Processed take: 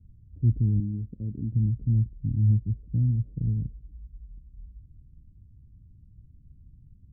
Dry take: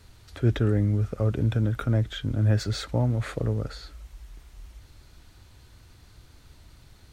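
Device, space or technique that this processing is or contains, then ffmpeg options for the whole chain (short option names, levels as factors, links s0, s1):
the neighbour's flat through the wall: -filter_complex "[0:a]lowpass=f=220:w=0.5412,lowpass=f=220:w=1.3066,equalizer=f=160:t=o:w=0.77:g=3,asettb=1/sr,asplit=3[s0][s1][s2];[s0]atrim=end=0.804[s3];[s1]atrim=start=0.8:end=1.54,asetpts=PTS-STARTPTS,afade=t=in:d=0.004:c=qsin,afade=t=out:st=0.736:d=0.004:c=qsin,lowshelf=f=200:t=q:w=1.5:g=-7.5[s4];[s2]atrim=start=1.536[s5];[s3][s4]acrossfade=d=0.004:c1=hsin:c2=qsin[s6];[s6][s5]acrossfade=d=0.004:c1=qsin:c2=hsin"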